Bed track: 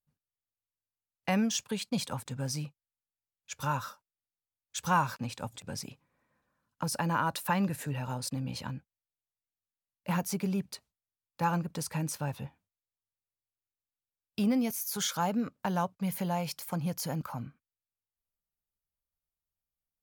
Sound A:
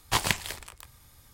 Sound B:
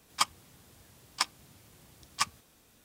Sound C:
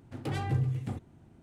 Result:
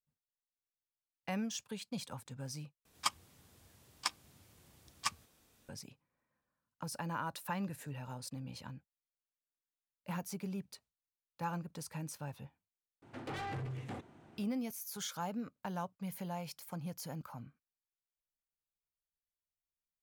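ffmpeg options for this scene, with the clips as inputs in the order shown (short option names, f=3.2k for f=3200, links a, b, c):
-filter_complex "[0:a]volume=-9.5dB[a];[2:a]equalizer=f=86:t=o:w=0.23:g=5[b];[3:a]asplit=2[c][d];[d]highpass=f=720:p=1,volume=28dB,asoftclip=type=tanh:threshold=-18.5dB[e];[c][e]amix=inputs=2:normalize=0,lowpass=f=2.9k:p=1,volume=-6dB[f];[a]asplit=2[g][h];[g]atrim=end=2.854[i];[b]atrim=end=2.84,asetpts=PTS-STARTPTS,volume=-6.5dB[j];[h]atrim=start=5.686[k];[f]atrim=end=1.42,asetpts=PTS-STARTPTS,volume=-14.5dB,afade=t=in:d=0.004:c=hsin,afade=t=out:st=1.416:d=0.004:c=hsin,adelay=13020[l];[i][j]acrossfade=d=0.004:c1=hsin:c2=hsin[m];[m][k]acrossfade=d=0.004:c1=hsin:c2=hsin[n];[n][l]amix=inputs=2:normalize=0"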